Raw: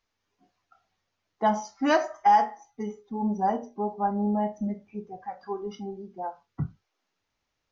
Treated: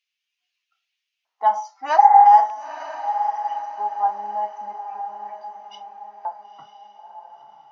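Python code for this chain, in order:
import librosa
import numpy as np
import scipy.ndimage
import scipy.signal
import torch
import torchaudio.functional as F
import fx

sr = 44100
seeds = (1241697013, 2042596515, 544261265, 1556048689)

y = fx.filter_lfo_highpass(x, sr, shape='square', hz=0.4, low_hz=850.0, high_hz=2700.0, q=3.6)
y = fx.echo_diffused(y, sr, ms=957, feedback_pct=41, wet_db=-8.0)
y = fx.spec_repair(y, sr, seeds[0], start_s=2.01, length_s=0.21, low_hz=220.0, high_hz=2200.0, source='after')
y = y * 10.0 ** (-3.5 / 20.0)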